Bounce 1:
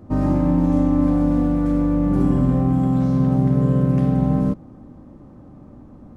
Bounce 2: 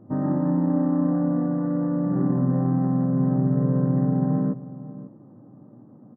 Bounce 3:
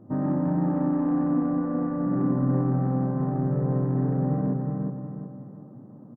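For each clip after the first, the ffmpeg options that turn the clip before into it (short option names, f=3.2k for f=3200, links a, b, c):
-filter_complex "[0:a]asplit=2[a][b];[b]adelay=542.3,volume=-15dB,highshelf=f=4k:g=-12.2[c];[a][c]amix=inputs=2:normalize=0,adynamicsmooth=sensitivity=1:basefreq=1.2k,afftfilt=real='re*between(b*sr/4096,100,2000)':imag='im*between(b*sr/4096,100,2000)':win_size=4096:overlap=0.75,volume=-4dB"
-filter_complex "[0:a]asplit=2[a][b];[b]asoftclip=type=tanh:threshold=-22dB,volume=-5dB[c];[a][c]amix=inputs=2:normalize=0,aecho=1:1:367|734|1101|1468|1835:0.631|0.233|0.0864|0.032|0.0118,volume=-4.5dB"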